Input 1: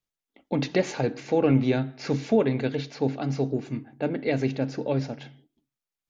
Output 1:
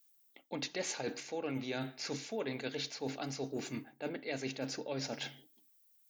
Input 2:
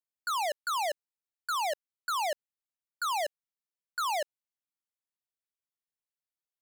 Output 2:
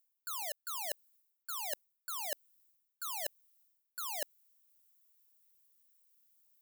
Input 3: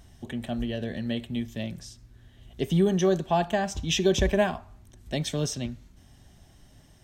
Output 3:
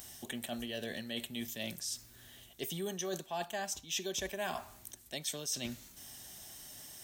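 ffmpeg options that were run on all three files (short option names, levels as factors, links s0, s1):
-af "aemphasis=mode=production:type=riaa,areverse,acompressor=threshold=0.01:ratio=5,areverse,volume=1.41"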